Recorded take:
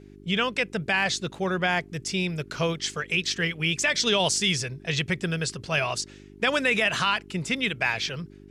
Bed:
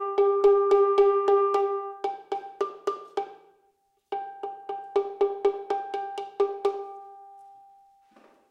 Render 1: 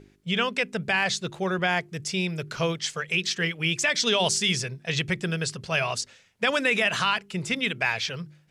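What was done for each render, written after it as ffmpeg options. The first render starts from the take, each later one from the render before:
-af "bandreject=f=50:t=h:w=4,bandreject=f=100:t=h:w=4,bandreject=f=150:t=h:w=4,bandreject=f=200:t=h:w=4,bandreject=f=250:t=h:w=4,bandreject=f=300:t=h:w=4,bandreject=f=350:t=h:w=4,bandreject=f=400:t=h:w=4"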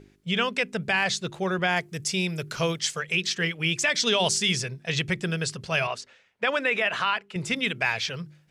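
-filter_complex "[0:a]asettb=1/sr,asplit=3[a][b][c];[a]atrim=end=1.764[d];[b]atrim=start=1.76:end=2.99,asetpts=PTS-STARTPTS,afade=t=in:d=0.004:c=qsin,afade=t=out:st=1.226:d=0.004:c=qsin,highshelf=f=7.3k:g=9[e];[c]atrim=start=2.986[f];[d][e]acrossfade=d=0.004:c1=hsin:c2=qsin[g];[g][f]acrossfade=d=0.004:c1=qsin:c2=hsin,asettb=1/sr,asplit=3[h][i][j];[h]atrim=end=5.874[k];[i]atrim=start=5.87:end=7.36,asetpts=PTS-STARTPTS,afade=t=in:d=0.004:c=qsin,afade=t=out:st=1.486:d=0.004:c=qsin,bass=f=250:g=-11,treble=f=4k:g=-13[l];[j]atrim=start=7.356[m];[k][l]acrossfade=d=0.004:c1=hsin:c2=qsin[n];[n][m]acrossfade=d=0.004:c1=qsin:c2=hsin"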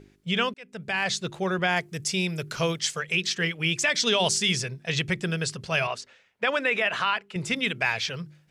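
-filter_complex "[0:a]asplit=2[a][b];[a]atrim=end=0.54,asetpts=PTS-STARTPTS,afade=t=out:st=0.536:d=0.004:c=hsin[c];[b]atrim=start=0.54,asetpts=PTS-STARTPTS,afade=t=in:d=0.62[d];[c][d]concat=n=2:v=0:a=1"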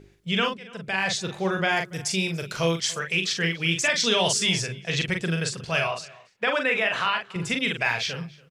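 -filter_complex "[0:a]asplit=2[a][b];[b]adelay=42,volume=-5dB[c];[a][c]amix=inputs=2:normalize=0,asplit=2[d][e];[e]adelay=285.7,volume=-22dB,highshelf=f=4k:g=-6.43[f];[d][f]amix=inputs=2:normalize=0"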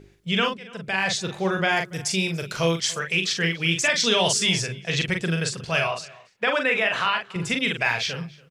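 -af "volume=1.5dB"

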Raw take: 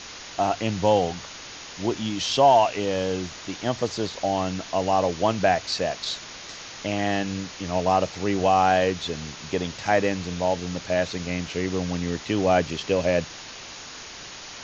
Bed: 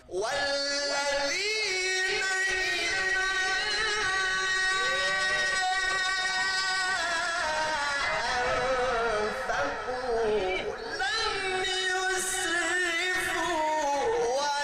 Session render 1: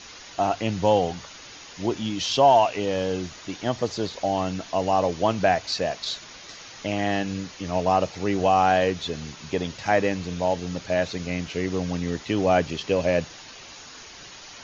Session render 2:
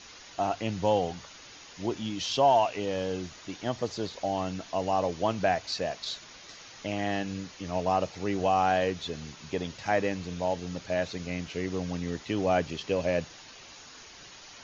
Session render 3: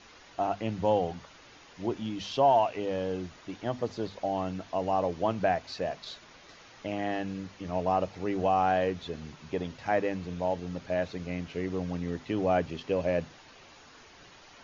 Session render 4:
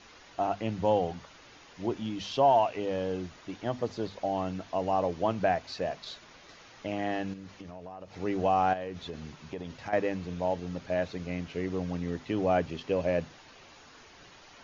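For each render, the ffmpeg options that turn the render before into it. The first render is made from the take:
-af "afftdn=nr=6:nf=-40"
-af "volume=-5.5dB"
-af "lowpass=f=1.9k:p=1,bandreject=f=50:t=h:w=6,bandreject=f=100:t=h:w=6,bandreject=f=150:t=h:w=6,bandreject=f=200:t=h:w=6,bandreject=f=250:t=h:w=6"
-filter_complex "[0:a]asettb=1/sr,asplit=3[a][b][c];[a]atrim=end=7.334[d];[b]atrim=start=7.33:end=8.15,asetpts=PTS-STARTPTS,afade=t=in:d=0.004:c=qsin,afade=t=out:st=0.816:d=0.004:c=qsin,acompressor=threshold=-39dB:ratio=12:attack=3.2:release=140:knee=1:detection=peak[e];[c]atrim=start=8.146[f];[d][e]acrossfade=d=0.004:c1=hsin:c2=qsin[g];[g][f]acrossfade=d=0.004:c1=qsin:c2=hsin,asettb=1/sr,asplit=3[h][i][j];[h]atrim=end=8.734[k];[i]atrim=start=8.73:end=9.93,asetpts=PTS-STARTPTS,afade=t=in:d=0.004:c=qsin,afade=t=out:st=1.196:d=0.004:c=qsin,acompressor=threshold=-33dB:ratio=6:attack=3.2:release=140:knee=1:detection=peak[l];[j]atrim=start=9.926[m];[k][l]acrossfade=d=0.004:c1=hsin:c2=qsin[n];[n][m]acrossfade=d=0.004:c1=qsin:c2=hsin"

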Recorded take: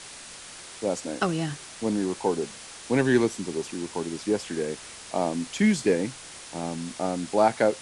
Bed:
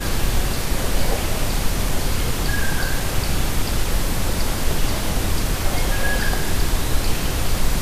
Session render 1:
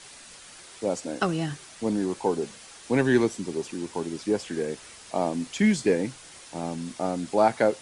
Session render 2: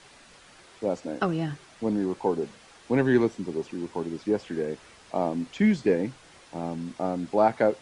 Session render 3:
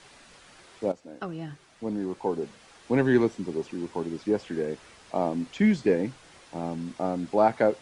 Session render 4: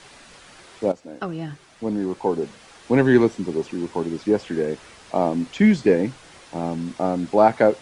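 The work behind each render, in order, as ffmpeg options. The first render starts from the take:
-af "afftdn=nr=6:nf=-44"
-filter_complex "[0:a]acrossover=split=6000[a][b];[b]acompressor=threshold=-54dB:ratio=4:attack=1:release=60[c];[a][c]amix=inputs=2:normalize=0,highshelf=f=2.7k:g=-8.5"
-filter_complex "[0:a]asplit=2[a][b];[a]atrim=end=0.92,asetpts=PTS-STARTPTS,afade=t=out:st=0.916:d=0.004:c=hsin:silence=0.223872[c];[b]atrim=start=0.92,asetpts=PTS-STARTPTS,afade=t=in:d=2.03:silence=0.223872[d];[c][d]concat=n=2:v=0:a=1"
-af "volume=6dB"

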